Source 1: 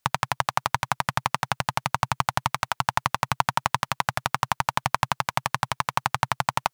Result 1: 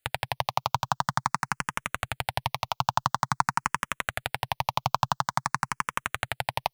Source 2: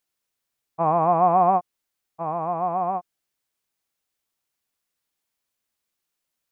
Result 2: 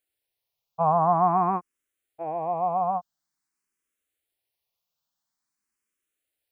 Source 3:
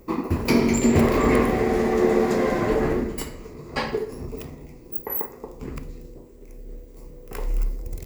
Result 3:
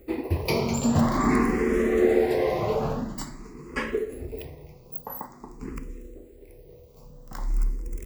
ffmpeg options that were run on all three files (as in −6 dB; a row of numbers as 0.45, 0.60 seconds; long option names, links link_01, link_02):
-filter_complex "[0:a]asplit=2[link_01][link_02];[link_02]afreqshift=0.48[link_03];[link_01][link_03]amix=inputs=2:normalize=1"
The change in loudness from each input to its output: −3.0, −2.5, −3.0 LU